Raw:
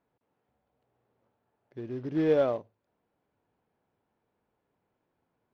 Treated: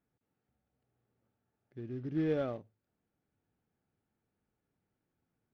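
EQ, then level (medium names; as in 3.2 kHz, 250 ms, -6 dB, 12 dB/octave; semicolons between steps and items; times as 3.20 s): peaking EQ 590 Hz -10 dB 1.7 oct; treble shelf 2 kHz -9 dB; band-stop 1 kHz, Q 5.6; 0.0 dB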